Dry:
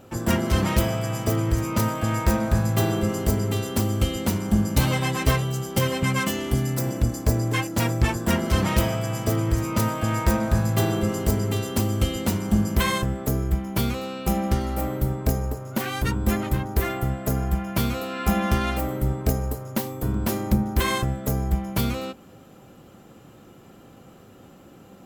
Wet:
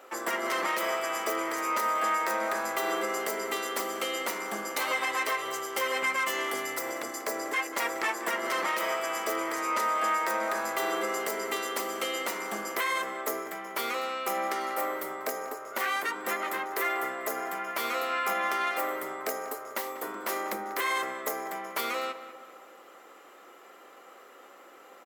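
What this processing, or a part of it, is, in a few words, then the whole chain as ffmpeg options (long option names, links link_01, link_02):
laptop speaker: -filter_complex "[0:a]asettb=1/sr,asplit=3[link_01][link_02][link_03];[link_01]atrim=end=9.584[link_04];[link_02]atrim=start=9.58:end=10.04,asetpts=PTS-STARTPTS,afade=type=in:duration=0.004:curve=qsin,afade=type=out:start_time=0.456:duration=0.004:curve=qsin,lowpass=12000[link_05];[link_03]atrim=start=10.036[link_06];[link_04][link_05]acrossfade=duration=0.004:curve1=hsin:curve2=qsin[link_07];[link_07][link_06]acrossfade=duration=0.004:curve1=qsin:curve2=hsin,highpass=frequency=400:width=0.5412,highpass=frequency=400:width=1.3066,equalizer=frequency=1200:width_type=o:width=0.59:gain=7.5,equalizer=frequency=2000:width_type=o:width=0.34:gain=9.5,alimiter=limit=-18dB:level=0:latency=1:release=115,asplit=2[link_08][link_09];[link_09]adelay=192,lowpass=frequency=2500:poles=1,volume=-12dB,asplit=2[link_10][link_11];[link_11]adelay=192,lowpass=frequency=2500:poles=1,volume=0.53,asplit=2[link_12][link_13];[link_13]adelay=192,lowpass=frequency=2500:poles=1,volume=0.53,asplit=2[link_14][link_15];[link_15]adelay=192,lowpass=frequency=2500:poles=1,volume=0.53,asplit=2[link_16][link_17];[link_17]adelay=192,lowpass=frequency=2500:poles=1,volume=0.53,asplit=2[link_18][link_19];[link_19]adelay=192,lowpass=frequency=2500:poles=1,volume=0.53[link_20];[link_08][link_10][link_12][link_14][link_16][link_18][link_20]amix=inputs=7:normalize=0,volume=-1.5dB"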